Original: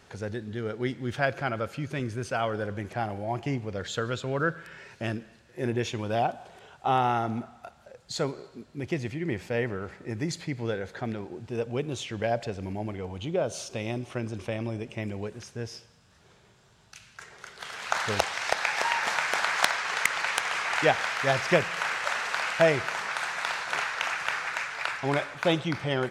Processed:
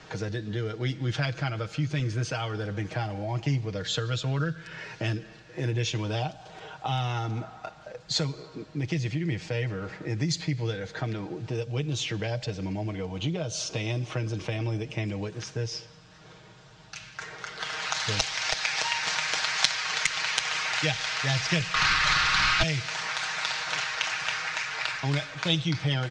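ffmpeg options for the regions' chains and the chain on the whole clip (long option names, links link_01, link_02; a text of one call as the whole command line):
ffmpeg -i in.wav -filter_complex "[0:a]asettb=1/sr,asplit=3[link_01][link_02][link_03];[link_01]atrim=end=21.744[link_04];[link_02]atrim=start=21.74:end=22.63,asetpts=PTS-STARTPTS,afade=type=in:duration=0.004:curve=qsin,afade=type=out:start_time=0.886:duration=0.004:curve=qsin,equalizer=frequency=1200:width=1.4:gain=13.5,asplit=2[link_05][link_06];[link_06]highpass=frequency=720:poles=1,volume=21dB,asoftclip=type=tanh:threshold=-2dB[link_07];[link_05][link_07]amix=inputs=2:normalize=0,lowpass=frequency=1500:poles=1,volume=-6dB[link_08];[link_03]atrim=start=22.626[link_09];[link_04][link_08]acrossfade=duration=0.004:curve1=hsin:curve2=qsin[link_10];[link_10][link_09]acrossfade=duration=0.004:curve1=qsin:curve2=hsin,lowpass=frequency=6500:width=0.5412,lowpass=frequency=6500:width=1.3066,aecho=1:1:6.4:0.71,acrossover=split=140|3000[link_11][link_12][link_13];[link_12]acompressor=threshold=-39dB:ratio=6[link_14];[link_11][link_14][link_13]amix=inputs=3:normalize=0,volume=6.5dB" out.wav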